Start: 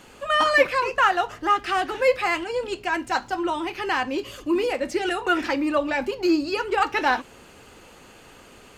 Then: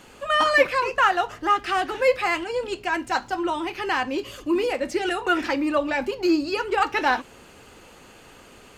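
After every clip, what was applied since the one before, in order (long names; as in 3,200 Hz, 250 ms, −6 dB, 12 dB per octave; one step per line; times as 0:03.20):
no processing that can be heard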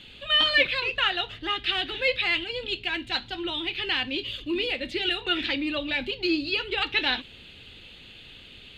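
drawn EQ curve 100 Hz 0 dB, 1,100 Hz −17 dB, 3,700 Hz +11 dB, 5,600 Hz −16 dB
level +2.5 dB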